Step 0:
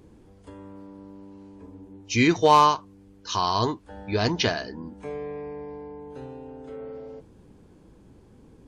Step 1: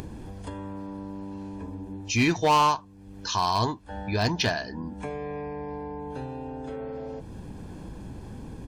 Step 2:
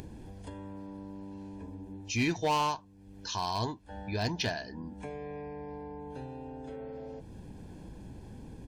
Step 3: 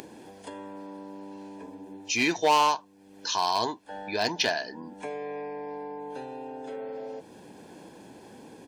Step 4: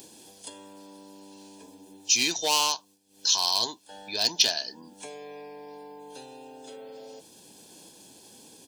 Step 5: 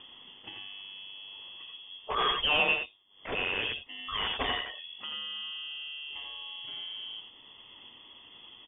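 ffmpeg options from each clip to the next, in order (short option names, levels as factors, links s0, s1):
-af "aecho=1:1:1.2:0.38,acompressor=mode=upward:threshold=0.0562:ratio=2.5,asoftclip=type=hard:threshold=0.188,volume=0.841"
-af "equalizer=f=1200:w=3.9:g=-8,volume=0.473"
-af "highpass=360,volume=2.37"
-af "agate=range=0.0224:threshold=0.00501:ratio=3:detection=peak,acompressor=mode=upward:threshold=0.00447:ratio=2.5,aexciter=amount=5.7:drive=5.9:freq=2900,volume=0.447"
-af "aresample=11025,volume=15,asoftclip=hard,volume=0.0668,aresample=44100,aecho=1:1:87|95:0.531|0.335,lowpass=f=3100:t=q:w=0.5098,lowpass=f=3100:t=q:w=0.6013,lowpass=f=3100:t=q:w=0.9,lowpass=f=3100:t=q:w=2.563,afreqshift=-3600,volume=1.33"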